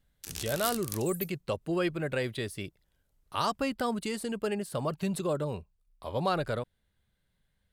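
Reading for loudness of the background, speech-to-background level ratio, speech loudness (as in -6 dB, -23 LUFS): -37.5 LUFS, 5.0 dB, -32.5 LUFS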